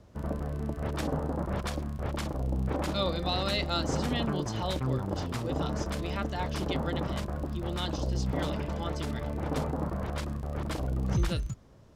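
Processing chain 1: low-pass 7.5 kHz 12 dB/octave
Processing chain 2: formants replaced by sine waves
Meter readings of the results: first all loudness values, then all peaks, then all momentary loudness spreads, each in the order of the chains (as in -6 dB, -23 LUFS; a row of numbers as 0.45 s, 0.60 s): -32.5 LUFS, -31.0 LUFS; -17.0 dBFS, -13.0 dBFS; 6 LU, 10 LU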